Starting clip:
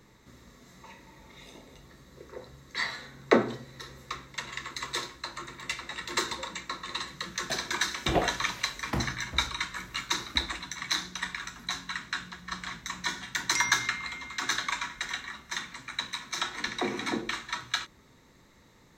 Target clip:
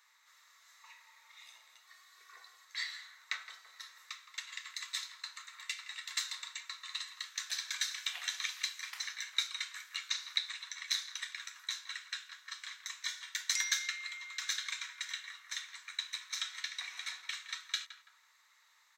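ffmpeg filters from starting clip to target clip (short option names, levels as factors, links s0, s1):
-filter_complex "[0:a]asplit=2[s0][s1];[s1]adelay=166,lowpass=f=2000:p=1,volume=0.266,asplit=2[s2][s3];[s3]adelay=166,lowpass=f=2000:p=1,volume=0.28,asplit=2[s4][s5];[s5]adelay=166,lowpass=f=2000:p=1,volume=0.28[s6];[s2][s4][s6]amix=inputs=3:normalize=0[s7];[s0][s7]amix=inputs=2:normalize=0,asettb=1/sr,asplit=3[s8][s9][s10];[s8]atrim=end=9.974[s11];[s9]atrim=start=9.97:end=10.87,asetpts=PTS-STARTPTS,afade=t=in:d=0.004:c=qsin,afade=t=out:st=0.896:d=0.004:c=qsin,acrossover=split=7300[s12][s13];[s13]acompressor=threshold=0.00112:ratio=4:attack=1:release=60[s14];[s12][s14]amix=inputs=2:normalize=0[s15];[s10]atrim=start=10.866[s16];[s11][s15]acrossfade=d=0.004:c1=hsin:c2=qsin[s17];[s17][s16]acrossfade=d=0.004:c1=qsin:c2=hsin,highpass=f=1100:w=0.5412,highpass=f=1100:w=1.3066,acrossover=split=2000[s18][s19];[s18]acompressor=threshold=0.00251:ratio=6[s20];[s20][s19]amix=inputs=2:normalize=0,asettb=1/sr,asplit=3[s21][s22][s23];[s21]atrim=end=1.874[s24];[s22]atrim=start=1.87:end=2.65,asetpts=PTS-STARTPTS,afade=t=in:d=0.004:c=qsin,afade=t=out:st=0.776:d=0.004:c=qsin,aecho=1:1:2.7:0.99,atrim=end_sample=34398[s25];[s23]atrim=start=2.646[s26];[s24][s25]acrossfade=d=0.004:c1=hsin:c2=qsin[s27];[s27][s26]acrossfade=d=0.004:c1=qsin:c2=hsin,volume=0.668"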